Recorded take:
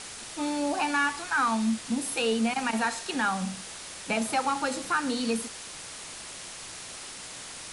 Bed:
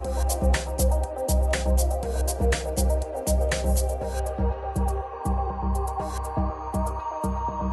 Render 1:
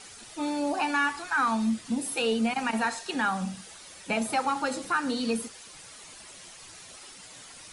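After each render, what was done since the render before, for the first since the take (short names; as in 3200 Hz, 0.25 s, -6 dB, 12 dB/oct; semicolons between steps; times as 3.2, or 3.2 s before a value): denoiser 10 dB, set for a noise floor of -42 dBFS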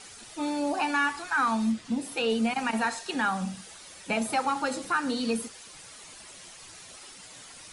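1.72–2.3 air absorption 52 m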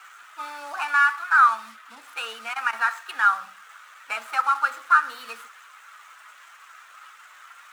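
median filter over 9 samples; resonant high-pass 1300 Hz, resonance Q 4.7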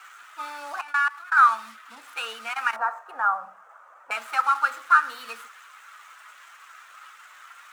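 0.81–1.37 level quantiser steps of 21 dB; 2.76–4.11 EQ curve 330 Hz 0 dB, 630 Hz +11 dB, 1200 Hz -1 dB, 1900 Hz -13 dB, 3700 Hz -23 dB, 6200 Hz -17 dB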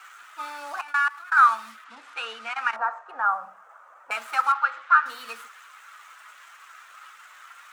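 1.84–3.29 air absorption 72 m; 4.52–5.06 BPF 590–3100 Hz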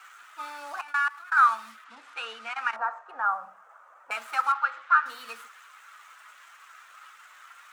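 gain -3 dB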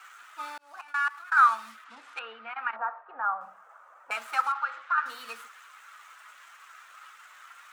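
0.58–1.12 fade in; 2.19–3.41 air absorption 450 m; 4.46–4.98 compressor 2.5:1, threshold -25 dBFS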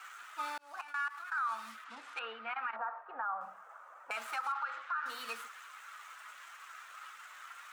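compressor 1.5:1, threshold -32 dBFS, peak gain reduction 6.5 dB; limiter -28 dBFS, peak gain reduction 11.5 dB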